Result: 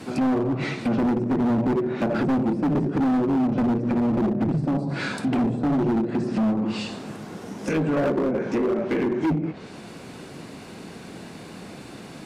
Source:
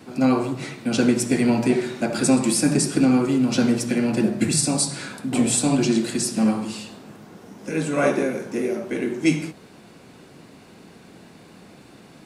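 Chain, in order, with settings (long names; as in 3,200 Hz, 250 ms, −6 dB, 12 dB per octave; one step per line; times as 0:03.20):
treble cut that deepens with the level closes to 600 Hz, closed at −18 dBFS
in parallel at +1.5 dB: downward compressor 6 to 1, threshold −28 dBFS, peak gain reduction 14 dB
on the sum: hard clipping −19 dBFS, distortion −8 dB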